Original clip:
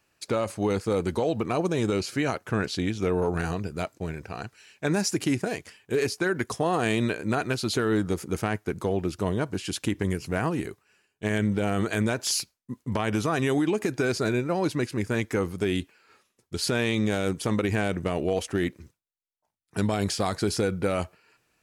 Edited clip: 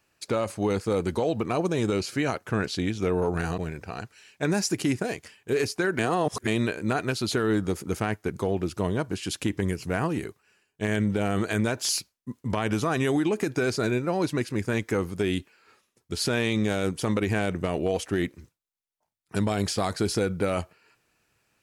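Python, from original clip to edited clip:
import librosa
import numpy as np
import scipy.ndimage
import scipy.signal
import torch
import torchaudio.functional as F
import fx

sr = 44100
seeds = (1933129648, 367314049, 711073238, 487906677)

y = fx.edit(x, sr, fx.cut(start_s=3.58, length_s=0.42),
    fx.reverse_span(start_s=6.41, length_s=0.48), tone=tone)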